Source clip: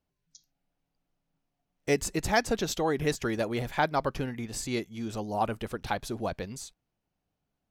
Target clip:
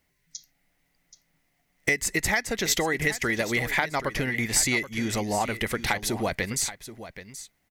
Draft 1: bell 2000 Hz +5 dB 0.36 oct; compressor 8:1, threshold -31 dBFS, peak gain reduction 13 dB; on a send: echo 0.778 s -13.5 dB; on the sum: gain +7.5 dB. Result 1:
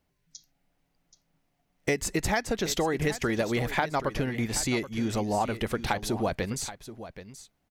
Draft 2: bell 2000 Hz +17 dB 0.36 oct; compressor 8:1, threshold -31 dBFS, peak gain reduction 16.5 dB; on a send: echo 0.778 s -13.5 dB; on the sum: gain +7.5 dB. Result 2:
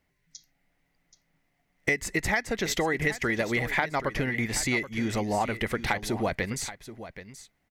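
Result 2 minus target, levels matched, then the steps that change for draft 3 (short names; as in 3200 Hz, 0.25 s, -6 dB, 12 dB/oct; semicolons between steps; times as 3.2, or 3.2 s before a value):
8000 Hz band -5.5 dB
add after compressor: high shelf 4000 Hz +10 dB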